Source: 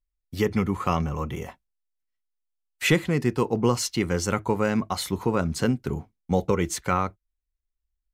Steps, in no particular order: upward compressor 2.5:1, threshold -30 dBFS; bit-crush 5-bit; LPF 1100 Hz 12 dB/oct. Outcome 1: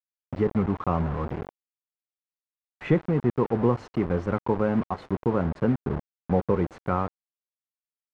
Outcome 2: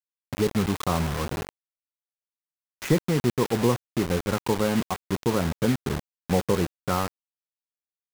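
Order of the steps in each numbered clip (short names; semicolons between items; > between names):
upward compressor > bit-crush > LPF; LPF > upward compressor > bit-crush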